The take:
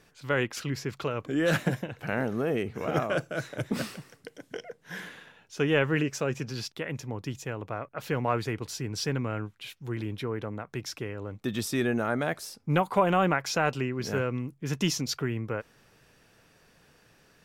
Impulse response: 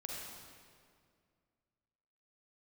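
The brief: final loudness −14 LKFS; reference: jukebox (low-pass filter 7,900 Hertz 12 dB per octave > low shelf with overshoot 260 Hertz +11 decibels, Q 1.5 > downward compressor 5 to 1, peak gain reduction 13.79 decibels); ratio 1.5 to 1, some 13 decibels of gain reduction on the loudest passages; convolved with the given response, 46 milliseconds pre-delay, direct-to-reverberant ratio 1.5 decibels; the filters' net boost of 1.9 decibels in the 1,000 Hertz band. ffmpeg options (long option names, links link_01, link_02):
-filter_complex "[0:a]equalizer=frequency=1000:width_type=o:gain=3.5,acompressor=threshold=-54dB:ratio=1.5,asplit=2[link_01][link_02];[1:a]atrim=start_sample=2205,adelay=46[link_03];[link_02][link_03]afir=irnorm=-1:irlink=0,volume=-1dB[link_04];[link_01][link_04]amix=inputs=2:normalize=0,lowpass=7900,lowshelf=frequency=260:width_type=q:width=1.5:gain=11,acompressor=threshold=-35dB:ratio=5,volume=25dB"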